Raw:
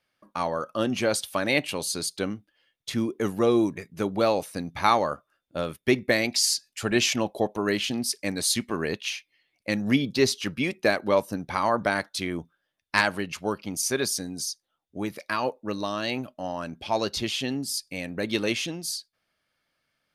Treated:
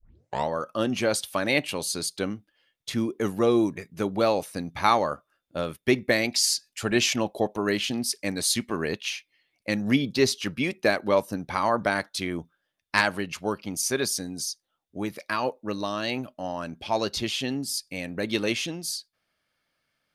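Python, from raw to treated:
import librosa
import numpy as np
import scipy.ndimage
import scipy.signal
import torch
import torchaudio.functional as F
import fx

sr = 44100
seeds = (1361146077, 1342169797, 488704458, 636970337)

y = fx.tape_start_head(x, sr, length_s=0.49)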